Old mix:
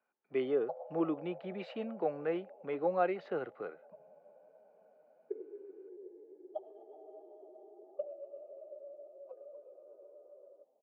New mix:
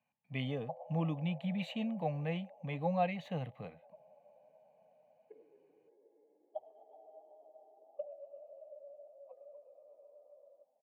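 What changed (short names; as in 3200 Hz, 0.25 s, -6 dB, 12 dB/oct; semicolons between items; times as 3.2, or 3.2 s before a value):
speech: remove three-band isolator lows -22 dB, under 300 Hz, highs -24 dB, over 2500 Hz; master: add fixed phaser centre 1400 Hz, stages 6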